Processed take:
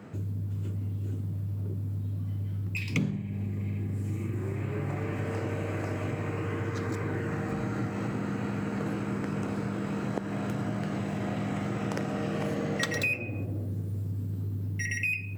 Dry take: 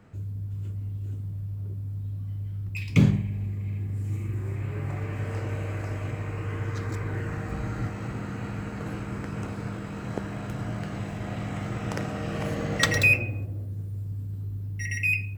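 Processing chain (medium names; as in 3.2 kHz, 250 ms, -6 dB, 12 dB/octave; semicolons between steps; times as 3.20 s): high-pass 180 Hz 12 dB/octave; bass shelf 480 Hz +7 dB; compression 4:1, threshold -36 dBFS, peak gain reduction 20 dB; trim +6.5 dB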